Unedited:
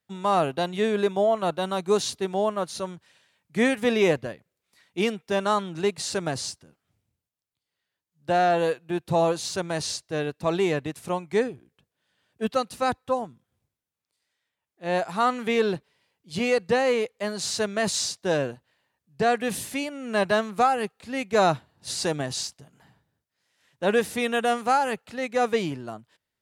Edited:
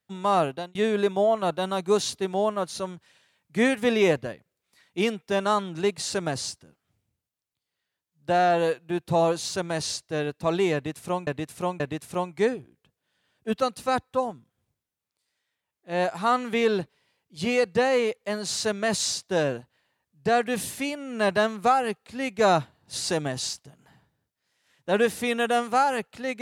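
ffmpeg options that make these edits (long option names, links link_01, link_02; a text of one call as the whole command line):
ffmpeg -i in.wav -filter_complex "[0:a]asplit=4[link_01][link_02][link_03][link_04];[link_01]atrim=end=0.75,asetpts=PTS-STARTPTS,afade=type=out:start_time=0.42:duration=0.33[link_05];[link_02]atrim=start=0.75:end=11.272,asetpts=PTS-STARTPTS,afade=type=in:duration=0.004:curve=hsin[link_06];[link_03]atrim=start=10.738:end=11.272[link_07];[link_04]atrim=start=10.738[link_08];[link_05][link_06]concat=n=2:v=0:a=1[link_09];[link_09][link_07]acrossfade=duration=0.004:curve1=hsin:curve2=hsin[link_10];[link_10][link_08]acrossfade=duration=0.004:curve1=hsin:curve2=hsin" out.wav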